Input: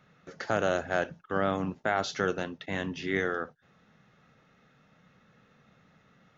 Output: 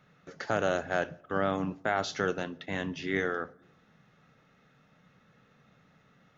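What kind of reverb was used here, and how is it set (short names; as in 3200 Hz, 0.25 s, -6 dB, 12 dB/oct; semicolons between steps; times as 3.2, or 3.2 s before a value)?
shoebox room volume 3600 m³, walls furnished, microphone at 0.35 m; gain -1 dB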